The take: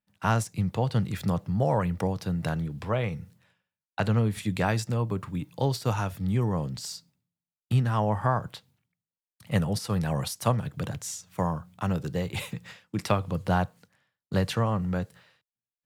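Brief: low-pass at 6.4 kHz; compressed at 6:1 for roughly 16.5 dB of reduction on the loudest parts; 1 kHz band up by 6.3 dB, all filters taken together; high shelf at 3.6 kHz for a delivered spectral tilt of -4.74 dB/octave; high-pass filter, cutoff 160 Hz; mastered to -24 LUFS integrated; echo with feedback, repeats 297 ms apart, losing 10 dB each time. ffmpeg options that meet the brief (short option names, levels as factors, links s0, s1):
-af "highpass=160,lowpass=6400,equalizer=f=1000:t=o:g=7.5,highshelf=f=3600:g=4,acompressor=threshold=0.02:ratio=6,aecho=1:1:297|594|891|1188:0.316|0.101|0.0324|0.0104,volume=5.31"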